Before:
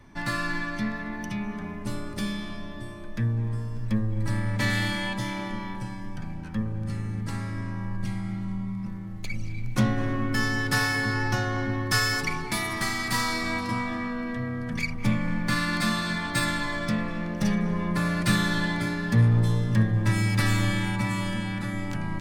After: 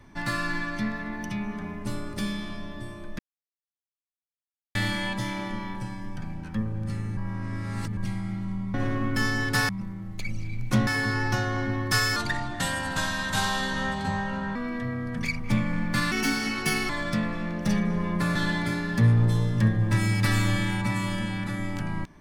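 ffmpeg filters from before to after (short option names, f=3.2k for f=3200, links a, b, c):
-filter_complex "[0:a]asplit=13[a][b][c][d][e][f][g][h][i][j][k][l][m];[a]atrim=end=3.19,asetpts=PTS-STARTPTS,afade=t=out:st=3.186:d=0.004:c=hsin[n];[b]atrim=start=3.19:end=4.75,asetpts=PTS-STARTPTS,volume=0[o];[c]atrim=start=4.75:end=7.172,asetpts=PTS-STARTPTS,afade=t=in:d=0.004:c=hsin[p];[d]atrim=start=7.168:end=7.972,asetpts=PTS-STARTPTS,areverse[q];[e]atrim=start=7.968:end=8.742[r];[f]atrim=start=9.918:end=10.872[s];[g]atrim=start=8.738:end=9.922[t];[h]atrim=start=10.868:end=12.164[u];[i]atrim=start=12.16:end=14.1,asetpts=PTS-STARTPTS,asetrate=35721,aresample=44100,atrim=end_sample=105622,asetpts=PTS-STARTPTS[v];[j]atrim=start=14.096:end=15.664[w];[k]atrim=start=15.66:end=16.65,asetpts=PTS-STARTPTS,asetrate=56007,aresample=44100,atrim=end_sample=34377,asetpts=PTS-STARTPTS[x];[l]atrim=start=16.646:end=18.112[y];[m]atrim=start=18.498[z];[n][o][p]concat=n=3:v=0:a=1[aa];[aa][q]acrossfade=d=0.004:c1=hsin:c2=hsin[ab];[ab][r]acrossfade=d=0.004:c1=hsin:c2=hsin[ac];[ac][s]acrossfade=d=0.004:c1=hsin:c2=hsin[ad];[ad][t]acrossfade=d=0.004:c1=hsin:c2=hsin[ae];[ae][u]acrossfade=d=0.004:c1=hsin:c2=hsin[af];[af][v]acrossfade=d=0.004:c1=hsin:c2=hsin[ag];[ag][w]acrossfade=d=0.004:c1=hsin:c2=hsin[ah];[ah][x]acrossfade=d=0.004:c1=hsin:c2=hsin[ai];[ai][y]acrossfade=d=0.004:c1=hsin:c2=hsin[aj];[aj][z]acrossfade=d=0.004:c1=hsin:c2=hsin"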